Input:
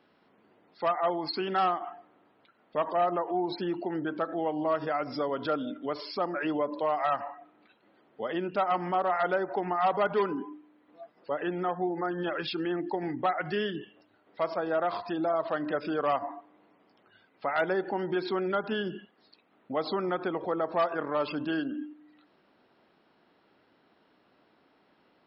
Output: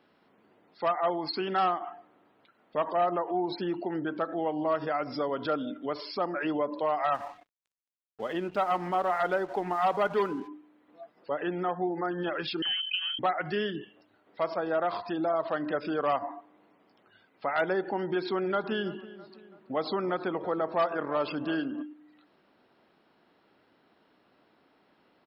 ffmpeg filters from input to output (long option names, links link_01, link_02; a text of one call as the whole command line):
ffmpeg -i in.wav -filter_complex "[0:a]asplit=3[link_01][link_02][link_03];[link_01]afade=type=out:start_time=7.13:duration=0.02[link_04];[link_02]aeval=exprs='sgn(val(0))*max(abs(val(0))-0.00251,0)':channel_layout=same,afade=type=in:start_time=7.13:duration=0.02,afade=type=out:start_time=10.47:duration=0.02[link_05];[link_03]afade=type=in:start_time=10.47:duration=0.02[link_06];[link_04][link_05][link_06]amix=inputs=3:normalize=0,asettb=1/sr,asplit=3[link_07][link_08][link_09];[link_07]atrim=end=12.624[link_10];[link_08]atrim=start=12.62:end=13.19,asetpts=PTS-STARTPTS,afade=type=in:duration=0.004:curve=qsin,afade=type=out:start_time=0.566:duration=0.004:curve=qsin,lowpass=frequency=2900:width_type=q:width=0.5098,lowpass=frequency=2900:width_type=q:width=0.6013,lowpass=frequency=2900:width_type=q:width=0.9,lowpass=frequency=2900:width_type=q:width=2.563,afreqshift=-3400[link_11];[link_09]atrim=start=13.186[link_12];[link_10][link_11]acrossfade=duration=0.004:curve1=hsin:curve2=qsin[link_13];[link_13][link_12]acrossfade=duration=0.004:curve1=qsin:curve2=hsin,asplit=3[link_14][link_15][link_16];[link_14]afade=type=out:start_time=18.42:duration=0.02[link_17];[link_15]asplit=2[link_18][link_19];[link_19]adelay=329,lowpass=frequency=2000:poles=1,volume=-16.5dB,asplit=2[link_20][link_21];[link_21]adelay=329,lowpass=frequency=2000:poles=1,volume=0.51,asplit=2[link_22][link_23];[link_23]adelay=329,lowpass=frequency=2000:poles=1,volume=0.51,asplit=2[link_24][link_25];[link_25]adelay=329,lowpass=frequency=2000:poles=1,volume=0.51,asplit=2[link_26][link_27];[link_27]adelay=329,lowpass=frequency=2000:poles=1,volume=0.51[link_28];[link_18][link_20][link_22][link_24][link_26][link_28]amix=inputs=6:normalize=0,afade=type=in:start_time=18.42:duration=0.02,afade=type=out:start_time=21.81:duration=0.02[link_29];[link_16]afade=type=in:start_time=21.81:duration=0.02[link_30];[link_17][link_29][link_30]amix=inputs=3:normalize=0" out.wav